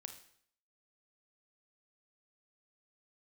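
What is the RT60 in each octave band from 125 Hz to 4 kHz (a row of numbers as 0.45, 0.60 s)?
0.65, 0.65, 0.60, 0.60, 0.60, 0.60 s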